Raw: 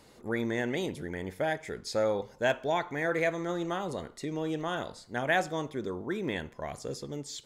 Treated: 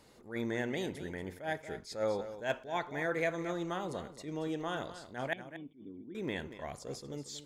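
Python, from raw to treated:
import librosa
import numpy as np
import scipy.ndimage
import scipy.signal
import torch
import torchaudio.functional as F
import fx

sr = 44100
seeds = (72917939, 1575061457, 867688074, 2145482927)

y = fx.formant_cascade(x, sr, vowel='i', at=(5.33, 6.15))
y = y + 10.0 ** (-13.0 / 20.0) * np.pad(y, (int(232 * sr / 1000.0), 0))[:len(y)]
y = fx.attack_slew(y, sr, db_per_s=170.0)
y = F.gain(torch.from_numpy(y), -4.0).numpy()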